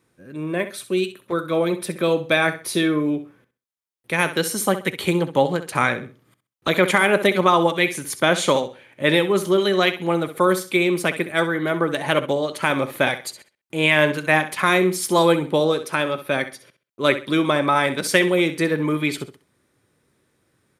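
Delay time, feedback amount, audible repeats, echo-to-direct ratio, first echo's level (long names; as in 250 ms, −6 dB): 65 ms, 26%, 2, −12.0 dB, −12.5 dB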